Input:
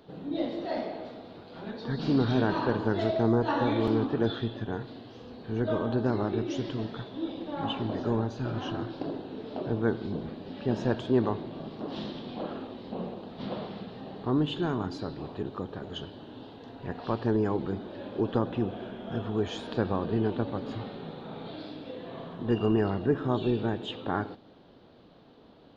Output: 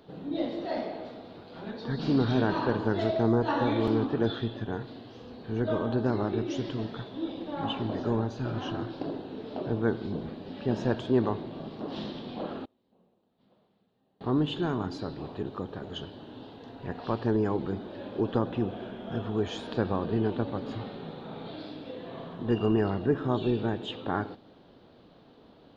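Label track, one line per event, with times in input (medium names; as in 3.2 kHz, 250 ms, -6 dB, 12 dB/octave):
12.650000	14.210000	inverted gate shuts at -37 dBFS, range -31 dB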